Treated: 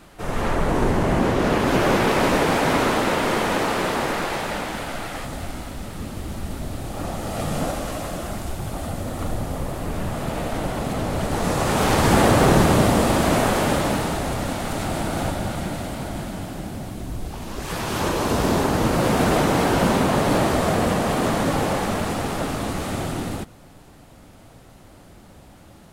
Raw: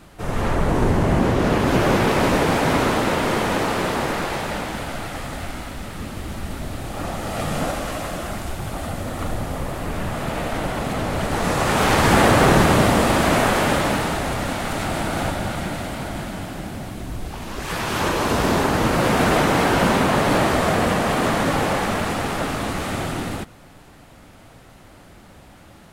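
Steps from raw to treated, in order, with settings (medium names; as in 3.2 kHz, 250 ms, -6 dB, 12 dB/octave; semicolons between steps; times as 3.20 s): peaking EQ 88 Hz -5 dB 2 oct, from 5.25 s 1.9 kHz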